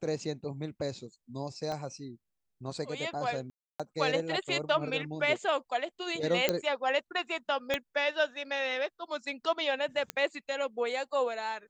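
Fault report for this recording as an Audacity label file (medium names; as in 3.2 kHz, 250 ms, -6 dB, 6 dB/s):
1.720000	1.720000	pop -24 dBFS
3.500000	3.800000	dropout 296 ms
6.490000	6.490000	pop -11 dBFS
7.740000	7.740000	pop -14 dBFS
10.100000	10.100000	pop -16 dBFS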